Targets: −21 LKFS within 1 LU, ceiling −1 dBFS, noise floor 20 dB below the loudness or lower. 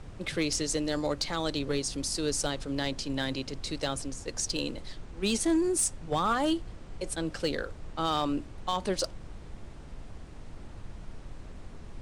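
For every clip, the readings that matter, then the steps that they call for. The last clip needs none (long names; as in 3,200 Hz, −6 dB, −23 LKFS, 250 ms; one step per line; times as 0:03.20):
share of clipped samples 0.3%; peaks flattened at −20.0 dBFS; background noise floor −46 dBFS; target noise floor −51 dBFS; integrated loudness −31.0 LKFS; sample peak −20.0 dBFS; target loudness −21.0 LKFS
→ clipped peaks rebuilt −20 dBFS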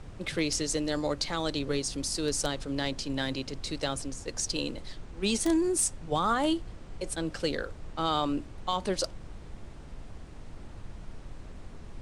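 share of clipped samples 0.0%; background noise floor −46 dBFS; target noise floor −51 dBFS
→ noise reduction from a noise print 6 dB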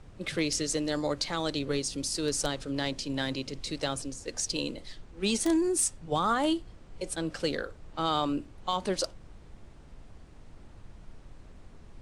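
background noise floor −52 dBFS; integrated loudness −31.0 LKFS; sample peak −12.0 dBFS; target loudness −21.0 LKFS
→ level +10 dB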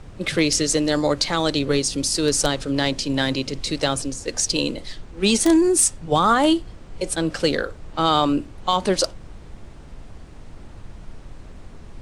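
integrated loudness −21.0 LKFS; sample peak −2.0 dBFS; background noise floor −42 dBFS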